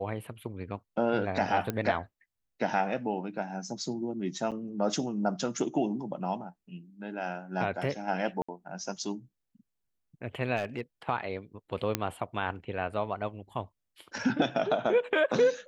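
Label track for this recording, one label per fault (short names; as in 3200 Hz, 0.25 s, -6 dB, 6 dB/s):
1.700000	1.700000	pop -17 dBFS
4.510000	4.520000	gap 7.5 ms
8.420000	8.480000	gap 65 ms
10.560000	10.810000	clipped -25.5 dBFS
11.950000	11.950000	pop -10 dBFS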